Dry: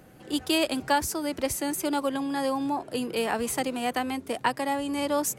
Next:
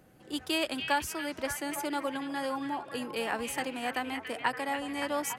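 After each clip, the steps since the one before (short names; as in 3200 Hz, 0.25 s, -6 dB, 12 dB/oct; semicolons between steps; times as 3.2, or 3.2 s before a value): dynamic EQ 1800 Hz, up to +6 dB, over -43 dBFS, Q 0.78; delay with a stepping band-pass 0.285 s, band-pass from 2500 Hz, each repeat -0.7 oct, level -4 dB; gain -7.5 dB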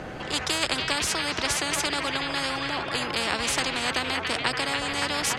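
air absorption 130 m; spectral compressor 4:1; gain +8 dB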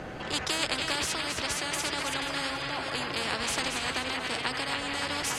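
regenerating reverse delay 0.242 s, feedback 42%, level -5.5 dB; vocal rider 2 s; gain -5.5 dB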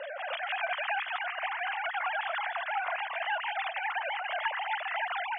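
sine-wave speech; three-band isolator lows -17 dB, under 470 Hz, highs -22 dB, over 2800 Hz; pre-echo 0.299 s -13 dB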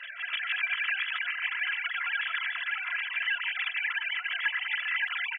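inverse Chebyshev high-pass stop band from 360 Hz, stop band 70 dB; comb 3 ms, depth 94%; gain +3.5 dB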